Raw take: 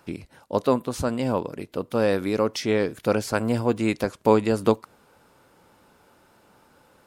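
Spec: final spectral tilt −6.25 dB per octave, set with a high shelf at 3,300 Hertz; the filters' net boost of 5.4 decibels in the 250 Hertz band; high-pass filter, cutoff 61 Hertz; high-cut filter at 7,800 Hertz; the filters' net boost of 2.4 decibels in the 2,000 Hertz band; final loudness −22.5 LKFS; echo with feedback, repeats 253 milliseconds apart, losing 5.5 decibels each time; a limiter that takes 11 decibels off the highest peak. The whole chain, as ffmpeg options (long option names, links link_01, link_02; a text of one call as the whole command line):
ffmpeg -i in.wav -af "highpass=61,lowpass=7800,equalizer=frequency=250:width_type=o:gain=6.5,equalizer=frequency=2000:width_type=o:gain=5,highshelf=frequency=3300:gain=-6,alimiter=limit=-12.5dB:level=0:latency=1,aecho=1:1:253|506|759|1012|1265|1518|1771:0.531|0.281|0.149|0.079|0.0419|0.0222|0.0118,volume=1.5dB" out.wav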